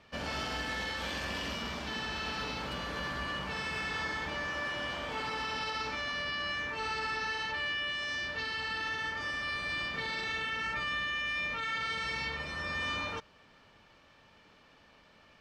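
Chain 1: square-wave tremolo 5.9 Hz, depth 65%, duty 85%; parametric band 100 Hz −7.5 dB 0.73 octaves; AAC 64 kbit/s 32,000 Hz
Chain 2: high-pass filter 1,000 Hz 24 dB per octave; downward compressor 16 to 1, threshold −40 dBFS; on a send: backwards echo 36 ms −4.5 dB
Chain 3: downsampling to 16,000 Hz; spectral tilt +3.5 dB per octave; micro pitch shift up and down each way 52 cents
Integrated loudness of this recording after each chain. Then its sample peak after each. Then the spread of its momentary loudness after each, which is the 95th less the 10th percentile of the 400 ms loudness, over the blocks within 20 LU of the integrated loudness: −35.0, −40.5, −34.0 LKFS; −24.0, −29.5, −21.0 dBFS; 4, 21, 4 LU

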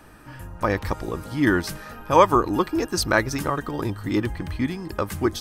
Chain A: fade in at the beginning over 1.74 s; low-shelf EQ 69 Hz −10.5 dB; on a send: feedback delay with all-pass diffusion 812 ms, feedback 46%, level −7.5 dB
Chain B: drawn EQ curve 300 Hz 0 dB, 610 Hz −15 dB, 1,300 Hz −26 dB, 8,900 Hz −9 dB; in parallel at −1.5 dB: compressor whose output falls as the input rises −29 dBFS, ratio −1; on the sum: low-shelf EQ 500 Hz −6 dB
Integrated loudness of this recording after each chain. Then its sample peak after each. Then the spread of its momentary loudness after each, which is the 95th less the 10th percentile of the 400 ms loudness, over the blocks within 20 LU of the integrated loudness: −23.0, −29.5 LKFS; −2.5, −14.0 dBFS; 16, 7 LU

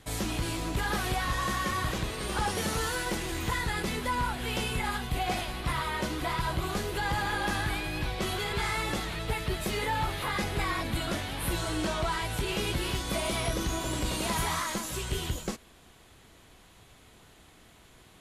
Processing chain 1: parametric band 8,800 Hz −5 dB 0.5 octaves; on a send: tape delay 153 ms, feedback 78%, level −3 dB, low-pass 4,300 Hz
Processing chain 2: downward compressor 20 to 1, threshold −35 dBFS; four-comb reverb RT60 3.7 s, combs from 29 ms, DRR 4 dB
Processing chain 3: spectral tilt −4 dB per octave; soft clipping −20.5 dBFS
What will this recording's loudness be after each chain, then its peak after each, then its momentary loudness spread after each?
−29.5, −37.5, −28.0 LKFS; −17.0, −24.5, −20.5 dBFS; 3, 15, 2 LU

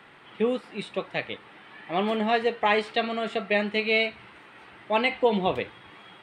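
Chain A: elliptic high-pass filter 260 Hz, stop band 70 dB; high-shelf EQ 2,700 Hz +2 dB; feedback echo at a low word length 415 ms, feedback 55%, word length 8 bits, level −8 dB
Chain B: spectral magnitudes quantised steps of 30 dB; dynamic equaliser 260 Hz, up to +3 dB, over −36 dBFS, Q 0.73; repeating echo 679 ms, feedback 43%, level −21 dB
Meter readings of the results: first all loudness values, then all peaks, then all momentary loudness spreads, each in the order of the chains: −27.0, −26.0 LKFS; −10.0, −9.0 dBFS; 11, 19 LU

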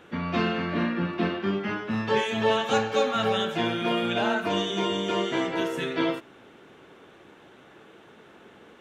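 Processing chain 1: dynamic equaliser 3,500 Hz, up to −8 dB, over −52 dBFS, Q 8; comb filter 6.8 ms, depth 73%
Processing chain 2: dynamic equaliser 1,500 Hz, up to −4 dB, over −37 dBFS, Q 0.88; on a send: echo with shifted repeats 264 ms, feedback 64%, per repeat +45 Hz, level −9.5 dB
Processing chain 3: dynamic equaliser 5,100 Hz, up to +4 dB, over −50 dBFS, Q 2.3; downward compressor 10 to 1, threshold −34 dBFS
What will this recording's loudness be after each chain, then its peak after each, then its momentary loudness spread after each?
−25.0, −27.0, −37.5 LKFS; −9.0, −12.0, −23.5 dBFS; 7, 14, 15 LU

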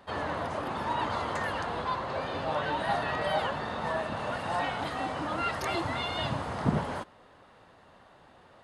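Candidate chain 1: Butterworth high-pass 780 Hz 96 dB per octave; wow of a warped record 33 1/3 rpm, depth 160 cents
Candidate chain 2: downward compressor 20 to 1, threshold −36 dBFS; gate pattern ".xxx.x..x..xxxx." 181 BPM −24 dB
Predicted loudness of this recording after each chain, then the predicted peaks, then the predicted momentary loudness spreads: −34.0, −42.5 LKFS; −20.0, −27.5 dBFS; 5, 18 LU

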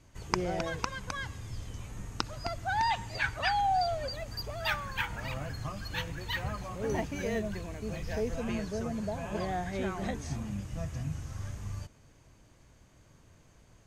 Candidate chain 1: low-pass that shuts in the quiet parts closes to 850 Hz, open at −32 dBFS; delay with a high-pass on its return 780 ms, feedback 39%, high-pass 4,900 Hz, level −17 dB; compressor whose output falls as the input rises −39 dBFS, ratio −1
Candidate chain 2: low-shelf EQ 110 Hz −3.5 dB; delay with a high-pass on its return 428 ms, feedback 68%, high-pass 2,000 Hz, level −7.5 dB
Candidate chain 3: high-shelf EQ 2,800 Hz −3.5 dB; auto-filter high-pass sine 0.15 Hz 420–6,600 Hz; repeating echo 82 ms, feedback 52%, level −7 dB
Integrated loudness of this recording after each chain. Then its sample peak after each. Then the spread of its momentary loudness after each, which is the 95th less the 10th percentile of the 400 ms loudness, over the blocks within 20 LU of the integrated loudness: −39.5, −34.5, −34.0 LKFS; −23.0, −7.0, −11.0 dBFS; 20, 12, 23 LU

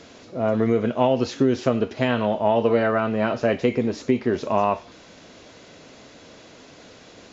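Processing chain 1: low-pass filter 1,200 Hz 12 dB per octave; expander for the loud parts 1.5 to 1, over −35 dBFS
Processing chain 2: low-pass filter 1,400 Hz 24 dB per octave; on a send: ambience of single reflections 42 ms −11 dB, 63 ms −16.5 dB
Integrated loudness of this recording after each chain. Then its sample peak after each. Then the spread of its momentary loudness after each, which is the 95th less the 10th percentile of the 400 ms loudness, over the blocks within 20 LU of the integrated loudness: −24.5, −22.0 LKFS; −7.5, −6.5 dBFS; 6, 4 LU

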